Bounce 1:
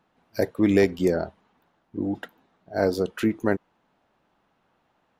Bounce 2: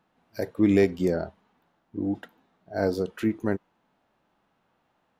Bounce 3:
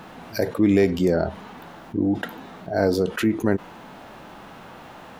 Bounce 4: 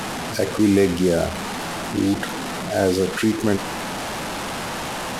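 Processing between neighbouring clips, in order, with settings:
harmonic-percussive split harmonic +7 dB; trim -6.5 dB
level flattener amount 50%; trim +1.5 dB
one-bit delta coder 64 kbps, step -24 dBFS; in parallel at -12 dB: overload inside the chain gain 18 dB

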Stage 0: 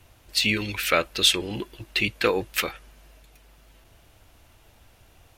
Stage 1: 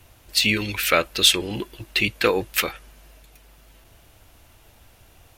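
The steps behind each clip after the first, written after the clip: treble shelf 10 kHz +5.5 dB; trim +2.5 dB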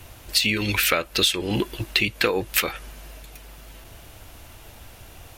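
compression 8:1, threshold -26 dBFS, peak gain reduction 15 dB; trim +8 dB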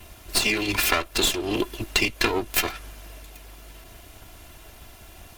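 comb filter that takes the minimum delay 2.9 ms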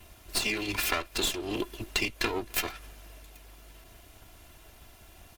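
echo from a far wall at 45 m, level -27 dB; trim -7 dB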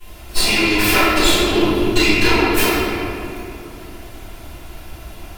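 reverberation RT60 2.7 s, pre-delay 3 ms, DRR -20 dB; trim -3.5 dB

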